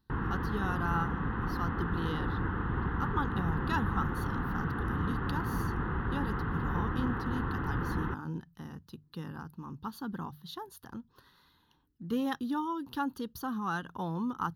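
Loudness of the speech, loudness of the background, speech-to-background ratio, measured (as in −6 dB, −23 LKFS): −38.0 LKFS, −34.0 LKFS, −4.0 dB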